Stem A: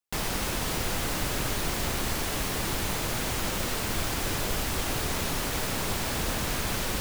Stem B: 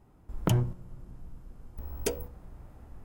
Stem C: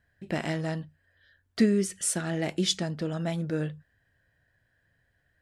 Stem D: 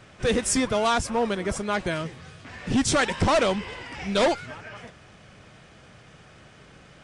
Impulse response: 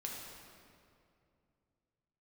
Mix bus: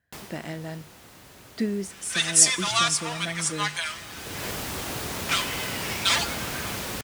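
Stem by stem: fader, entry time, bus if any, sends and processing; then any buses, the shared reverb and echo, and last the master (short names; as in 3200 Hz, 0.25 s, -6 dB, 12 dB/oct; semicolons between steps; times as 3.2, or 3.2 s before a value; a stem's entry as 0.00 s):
-2.0 dB, 0.00 s, send -24 dB, auto duck -20 dB, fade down 0.40 s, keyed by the third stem
-17.5 dB, 2.20 s, no send, dry
-4.5 dB, 0.00 s, no send, dry
-4.0 dB, 1.90 s, muted 4.51–5.29, send -11 dB, HPF 1000 Hz 24 dB/oct; high shelf 2600 Hz +11.5 dB; comb 5.9 ms, depth 86%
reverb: on, RT60 2.5 s, pre-delay 3 ms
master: HPF 79 Hz 12 dB/oct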